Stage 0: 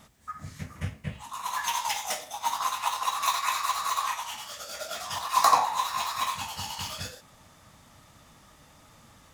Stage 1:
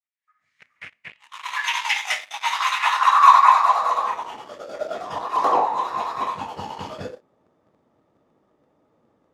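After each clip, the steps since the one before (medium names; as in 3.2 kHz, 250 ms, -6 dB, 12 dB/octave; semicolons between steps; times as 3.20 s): fade-in on the opening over 3.09 s; waveshaping leveller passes 3; band-pass sweep 2.2 kHz -> 400 Hz, 2.72–4.21 s; trim +8.5 dB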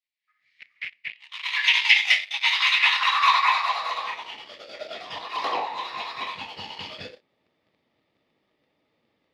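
high-order bell 3.1 kHz +16 dB; trim -9 dB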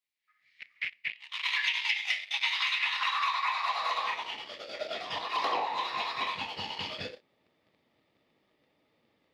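compression 16:1, threshold -26 dBFS, peak gain reduction 15.5 dB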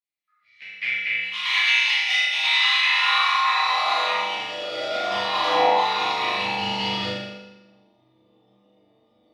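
spectral noise reduction 13 dB; flutter echo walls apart 6.9 m, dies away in 0.79 s; reverberation RT60 1.1 s, pre-delay 7 ms, DRR -7.5 dB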